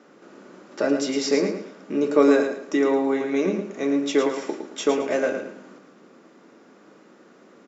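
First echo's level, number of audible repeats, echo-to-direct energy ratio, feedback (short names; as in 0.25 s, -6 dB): -7.0 dB, 3, -6.5 dB, 29%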